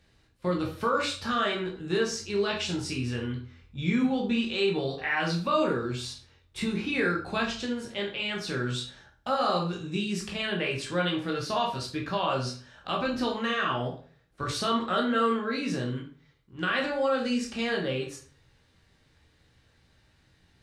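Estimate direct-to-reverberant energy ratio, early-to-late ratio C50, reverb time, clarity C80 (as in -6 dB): -1.5 dB, 7.0 dB, 0.45 s, 12.0 dB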